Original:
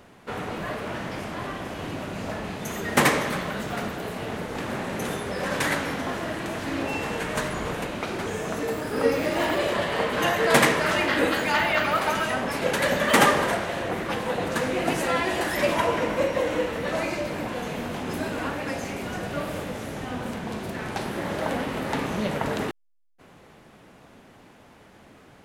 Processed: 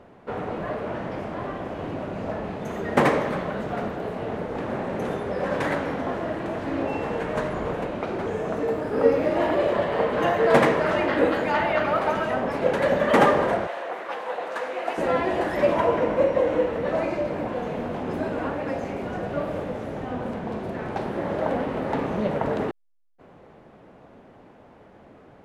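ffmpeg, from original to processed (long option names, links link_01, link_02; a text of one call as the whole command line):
ffmpeg -i in.wav -filter_complex "[0:a]asettb=1/sr,asplit=3[link_01][link_02][link_03];[link_01]atrim=end=13.674[link_04];[link_02]atrim=start=13.67:end=14.98,asetpts=PTS-STARTPTS,afade=type=in:duration=0.004:curve=qsin,afade=type=out:start_time=1.306:duration=0.004:curve=qsin,highpass=720[link_05];[link_03]atrim=start=14.976[link_06];[link_04][link_05]acrossfade=duration=0.004:curve1=hsin:curve2=qsin[link_07];[link_07][link_06]acrossfade=duration=0.004:curve1=qsin:curve2=hsin,lowpass=frequency=1300:poles=1,equalizer=frequency=560:width=0.91:gain=5" out.wav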